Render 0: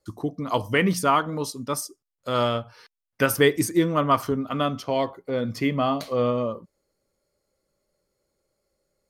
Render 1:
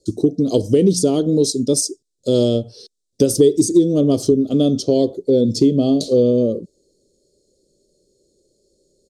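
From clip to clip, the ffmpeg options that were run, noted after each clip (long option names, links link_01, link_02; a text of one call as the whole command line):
ffmpeg -i in.wav -filter_complex "[0:a]firequalizer=gain_entry='entry(100,0);entry(390,10);entry(1000,-29);entry(2100,-27);entry(3700,3);entry(7800,7);entry(14000,-17)':delay=0.05:min_phase=1,asplit=2[link_01][link_02];[link_02]alimiter=limit=-12dB:level=0:latency=1:release=447,volume=2dB[link_03];[link_01][link_03]amix=inputs=2:normalize=0,acompressor=threshold=-14dB:ratio=2.5,volume=2.5dB" out.wav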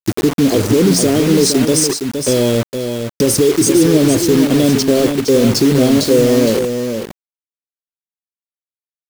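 ffmpeg -i in.wav -af "alimiter=limit=-13dB:level=0:latency=1:release=13,acrusher=bits=4:mix=0:aa=0.000001,aecho=1:1:464:0.447,volume=8dB" out.wav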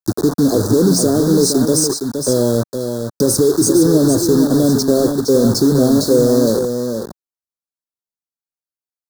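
ffmpeg -i in.wav -filter_complex "[0:a]acrossover=split=160|1000|4800[link_01][link_02][link_03][link_04];[link_03]asoftclip=type=tanh:threshold=-24.5dB[link_05];[link_01][link_02][link_05][link_04]amix=inputs=4:normalize=0,asuperstop=centerf=2500:order=8:qfactor=1.1,volume=-1dB" out.wav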